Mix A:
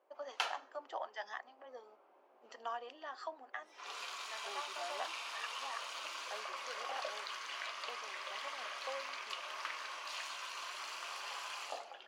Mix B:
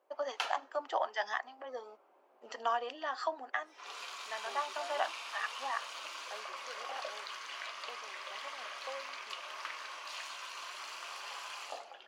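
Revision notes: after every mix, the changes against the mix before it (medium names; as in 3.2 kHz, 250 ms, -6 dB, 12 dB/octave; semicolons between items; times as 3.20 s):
first voice +9.0 dB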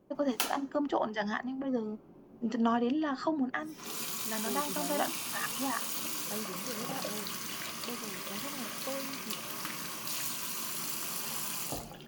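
background: remove low-pass 3.4 kHz 12 dB/octave; master: remove high-pass 590 Hz 24 dB/octave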